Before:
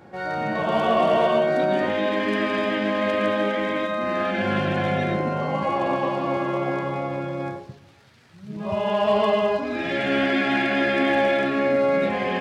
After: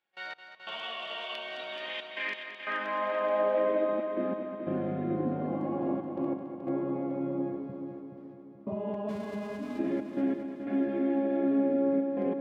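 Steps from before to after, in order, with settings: 9.08–9.78 spectral whitening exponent 0.1; compressor 6:1, threshold -24 dBFS, peak gain reduction 8.5 dB; step gate ".x..xxxxxxxx" 90 bpm -24 dB; in parallel at -5 dB: wrapped overs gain 17 dB; on the sum: band-pass sweep 3100 Hz -> 290 Hz, 1.95–4.22; on a send: multi-head echo 0.214 s, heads first and second, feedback 56%, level -10 dB

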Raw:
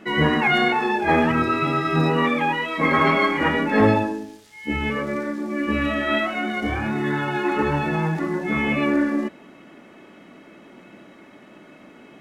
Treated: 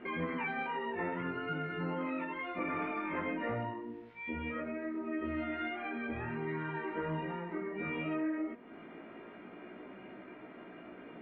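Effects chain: LPF 2200 Hz 24 dB/oct; notch 750 Hz, Q 21; de-hum 220.1 Hz, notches 29; compressor 2.5:1, threshold -38 dBFS, peak gain reduction 16.5 dB; chorus 0.18 Hz, delay 17.5 ms, depth 3.9 ms; speed mistake 44.1 kHz file played as 48 kHz

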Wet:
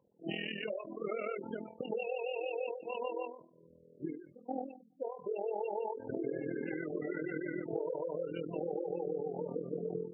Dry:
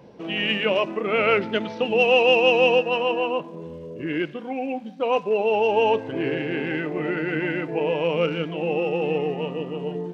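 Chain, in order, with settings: gate -31 dBFS, range -24 dB; dynamic EQ 160 Hz, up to -4 dB, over -36 dBFS, Q 1.4; in parallel at -9 dB: hard clip -18 dBFS, distortion -11 dB; on the sum: compressor 16:1, threshold -30 dBFS, peak gain reduction 18.5 dB; LPF 2100 Hz 6 dB/oct; on a send at -20 dB: reverb RT60 0.35 s, pre-delay 5 ms; on the sum: AM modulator 41 Hz, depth 70%; spectral gate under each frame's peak -15 dB strong; soft clip -15 dBFS, distortion -45 dB; ending taper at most 100 dB/s; gain +1 dB

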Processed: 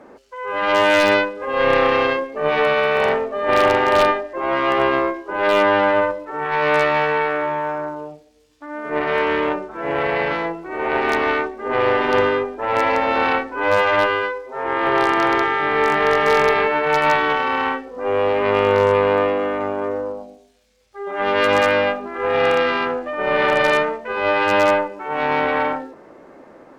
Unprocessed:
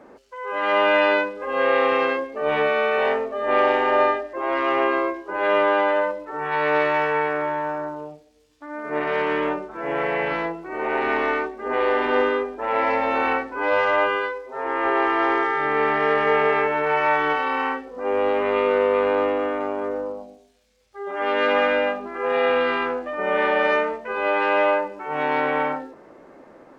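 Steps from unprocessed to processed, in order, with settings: added harmonics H 2 -7 dB, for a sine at -6.5 dBFS; wavefolder -7.5 dBFS; gain +3 dB

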